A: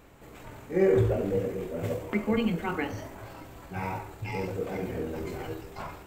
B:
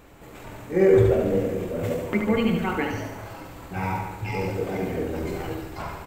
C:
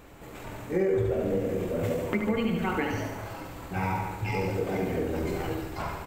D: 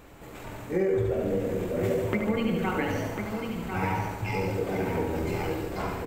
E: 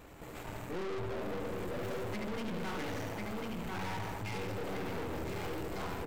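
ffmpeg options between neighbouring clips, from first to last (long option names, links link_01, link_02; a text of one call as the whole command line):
ffmpeg -i in.wav -af "aecho=1:1:75|150|225|300|375|450|525|600:0.501|0.296|0.174|0.103|0.0607|0.0358|0.0211|0.0125,volume=4dB" out.wav
ffmpeg -i in.wav -af "acompressor=threshold=-24dB:ratio=4" out.wav
ffmpeg -i in.wav -af "aecho=1:1:1047:0.473" out.wav
ffmpeg -i in.wav -af "aeval=exprs='(tanh(79.4*val(0)+0.7)-tanh(0.7))/79.4':channel_layout=same,volume=1dB" out.wav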